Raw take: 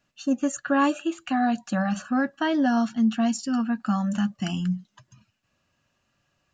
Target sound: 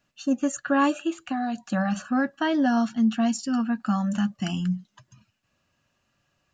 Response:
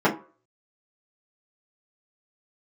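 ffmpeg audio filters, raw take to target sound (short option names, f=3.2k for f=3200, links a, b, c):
-filter_complex "[0:a]asettb=1/sr,asplit=3[a][b][c];[a]atrim=end=1.204[d];[b]atrim=start=1.2:end=1.7,asetpts=PTS-STARTPTS,afade=t=in:d=0.004:c=qsin,afade=t=out:st=0.496:d=0.004:c=qsin,acrossover=split=1300|3500[e][f][g];[e]acompressor=threshold=-25dB:ratio=4[h];[f]acompressor=threshold=-44dB:ratio=4[i];[g]acompressor=threshold=-50dB:ratio=4[j];[h][i][j]amix=inputs=3:normalize=0[k];[c]atrim=start=1.696[l];[d][k]acrossfade=d=0.004:c1=hsin:c2=qsin[m];[m][l]acrossfade=d=0.004:c1=qsin:c2=hsin"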